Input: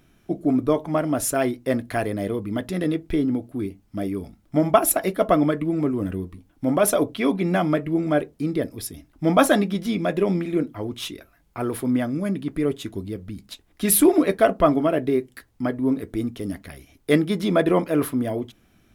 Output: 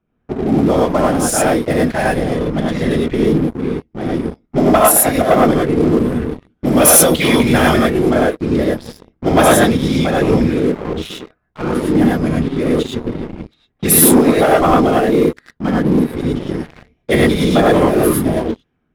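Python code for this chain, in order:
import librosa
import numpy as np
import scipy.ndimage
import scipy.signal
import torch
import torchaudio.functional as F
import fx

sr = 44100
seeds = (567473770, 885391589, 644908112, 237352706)

y = fx.high_shelf(x, sr, hz=2000.0, db=10.0, at=(6.2, 7.99))
y = fx.whisperise(y, sr, seeds[0])
y = fx.env_lowpass(y, sr, base_hz=1500.0, full_db=-18.0)
y = fx.high_shelf(y, sr, hz=5100.0, db=4.5)
y = fx.rev_gated(y, sr, seeds[1], gate_ms=130, shape='rising', drr_db=-4.0)
y = fx.leveller(y, sr, passes=3)
y = y * librosa.db_to_amplitude(-7.5)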